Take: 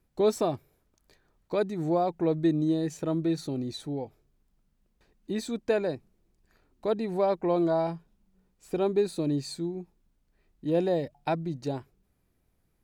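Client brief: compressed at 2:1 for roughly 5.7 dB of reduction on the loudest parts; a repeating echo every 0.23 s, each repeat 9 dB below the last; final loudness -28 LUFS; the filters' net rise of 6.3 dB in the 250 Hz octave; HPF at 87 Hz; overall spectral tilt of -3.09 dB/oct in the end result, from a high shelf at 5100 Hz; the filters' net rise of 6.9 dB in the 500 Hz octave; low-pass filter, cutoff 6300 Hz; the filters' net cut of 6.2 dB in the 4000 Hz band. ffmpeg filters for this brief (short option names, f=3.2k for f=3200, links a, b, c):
-af "highpass=87,lowpass=6.3k,equalizer=f=250:t=o:g=6,equalizer=f=500:t=o:g=7,equalizer=f=4k:t=o:g=-3.5,highshelf=f=5.1k:g=-6.5,acompressor=threshold=-23dB:ratio=2,aecho=1:1:230|460|690|920:0.355|0.124|0.0435|0.0152,volume=-1.5dB"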